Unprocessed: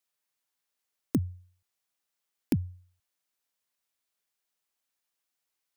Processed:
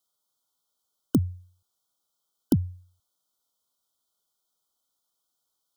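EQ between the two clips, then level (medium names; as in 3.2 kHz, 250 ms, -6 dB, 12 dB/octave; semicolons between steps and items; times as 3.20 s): brick-wall FIR band-stop 1.5–3 kHz; +5.0 dB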